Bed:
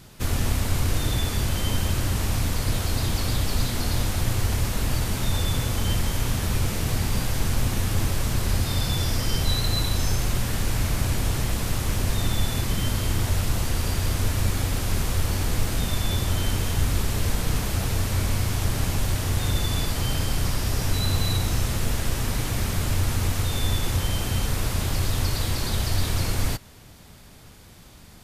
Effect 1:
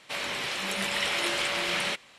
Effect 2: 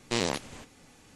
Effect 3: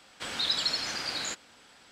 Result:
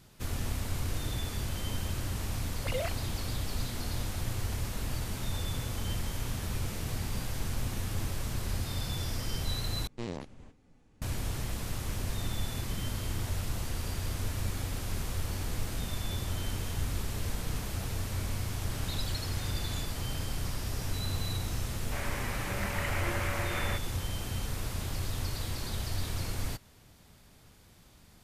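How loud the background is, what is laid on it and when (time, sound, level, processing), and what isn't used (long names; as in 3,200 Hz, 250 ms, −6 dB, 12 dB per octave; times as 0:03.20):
bed −10 dB
0:02.54: mix in 2 −7 dB + three sine waves on the formant tracks
0:09.87: overwrite with 2 −13 dB + spectral tilt −3 dB per octave
0:18.49: mix in 3 −13 dB
0:21.82: mix in 1 −3.5 dB + low-pass filter 2,100 Hz 24 dB per octave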